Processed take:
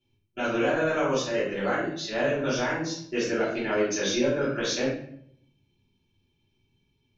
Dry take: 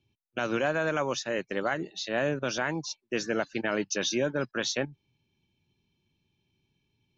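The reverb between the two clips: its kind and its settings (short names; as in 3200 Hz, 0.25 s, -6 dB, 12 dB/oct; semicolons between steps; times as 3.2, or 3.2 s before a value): shoebox room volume 120 m³, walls mixed, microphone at 3.1 m; gain -9 dB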